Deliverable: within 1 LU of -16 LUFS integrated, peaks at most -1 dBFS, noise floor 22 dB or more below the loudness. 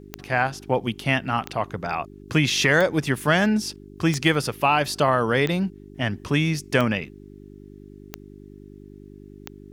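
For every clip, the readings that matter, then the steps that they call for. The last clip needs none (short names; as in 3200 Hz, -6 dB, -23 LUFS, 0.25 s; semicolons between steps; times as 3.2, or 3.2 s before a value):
clicks 8; hum 50 Hz; harmonics up to 400 Hz; hum level -42 dBFS; loudness -23.0 LUFS; peak -7.0 dBFS; loudness target -16.0 LUFS
-> de-click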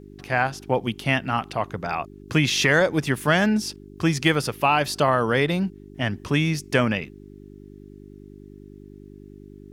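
clicks 0; hum 50 Hz; harmonics up to 400 Hz; hum level -42 dBFS
-> de-hum 50 Hz, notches 8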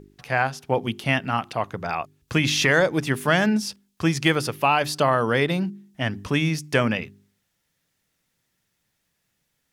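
hum none; loudness -23.0 LUFS; peak -6.0 dBFS; loudness target -16.0 LUFS
-> gain +7 dB; limiter -1 dBFS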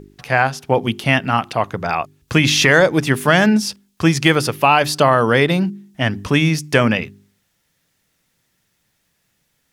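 loudness -16.5 LUFS; peak -1.0 dBFS; noise floor -68 dBFS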